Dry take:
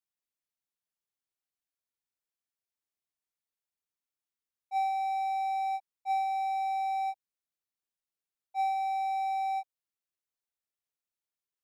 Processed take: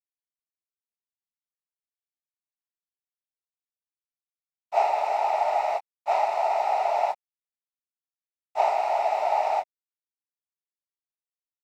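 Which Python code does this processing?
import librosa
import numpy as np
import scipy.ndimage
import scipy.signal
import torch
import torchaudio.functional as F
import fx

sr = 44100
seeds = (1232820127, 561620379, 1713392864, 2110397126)

y = fx.noise_vocoder(x, sr, seeds[0], bands=12)
y = np.sign(y) * np.maximum(np.abs(y) - 10.0 ** (-59.0 / 20.0), 0.0)
y = y * 10.0 ** (7.0 / 20.0)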